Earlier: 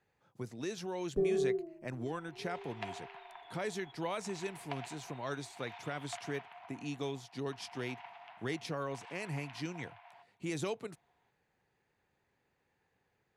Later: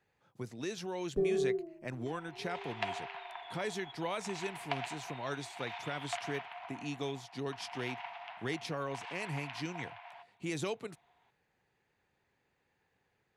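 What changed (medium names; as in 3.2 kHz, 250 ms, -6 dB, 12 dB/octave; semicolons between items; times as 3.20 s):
second sound +5.5 dB; master: add peaking EQ 2.9 kHz +2.5 dB 1.7 oct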